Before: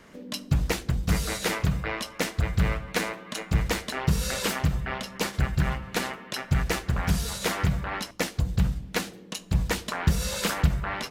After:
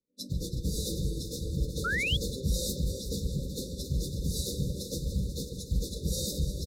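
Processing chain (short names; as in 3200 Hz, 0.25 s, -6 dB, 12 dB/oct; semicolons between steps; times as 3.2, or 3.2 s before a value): regenerating reverse delay 0.31 s, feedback 81%, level -11 dB; gate with hold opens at -30 dBFS; bell 920 Hz -6.5 dB 0.39 oct; notches 60/120/180/240/300/360/420/480/540/600 Hz; limiter -19.5 dBFS, peak gain reduction 8.5 dB; plain phase-vocoder stretch 0.6×; brick-wall FIR band-stop 590–3500 Hz; speakerphone echo 0.14 s, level -7 dB; painted sound rise, 1.84–2.17, 1300–3500 Hz -33 dBFS; three-band expander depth 40%; gain +2 dB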